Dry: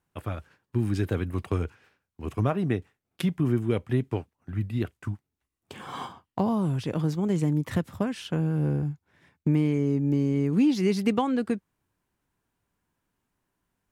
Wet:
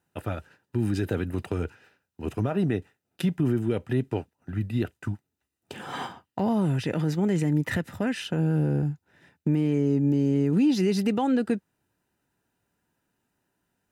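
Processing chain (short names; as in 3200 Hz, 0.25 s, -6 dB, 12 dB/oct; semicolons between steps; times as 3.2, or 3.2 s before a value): 5.9–8.25 dynamic EQ 2000 Hz, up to +8 dB, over -56 dBFS, Q 2.1; limiter -19 dBFS, peak gain reduction 7.5 dB; notch comb 1100 Hz; gain +4 dB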